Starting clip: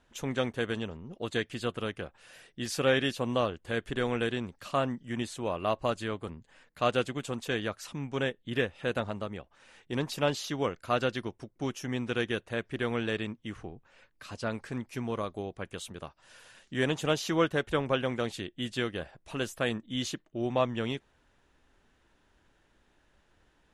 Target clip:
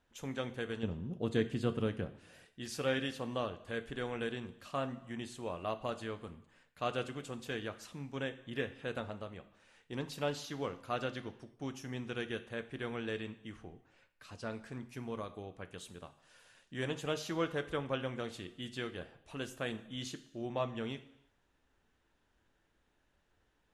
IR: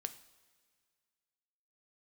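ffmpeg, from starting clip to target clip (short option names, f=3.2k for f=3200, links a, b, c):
-filter_complex "[0:a]asettb=1/sr,asplit=3[a][b][c];[a]atrim=end=0.834[d];[b]atrim=start=0.83:end=2.45,asetpts=PTS-STARTPTS,afade=t=in:d=0.004:c=qsin,afade=t=out:st=1.616:d=0.004:c=qsin,equalizer=f=150:w=0.34:g=12[e];[c]atrim=start=2.446[f];[d][e]acrossfade=d=0.004:c1=hsin:c2=qsin[g];[g][f]acrossfade=d=0.004:c1=qsin:c2=hsin[h];[1:a]atrim=start_sample=2205,afade=t=out:st=0.4:d=0.01,atrim=end_sample=18081[i];[h][i]afir=irnorm=-1:irlink=0,volume=-6dB"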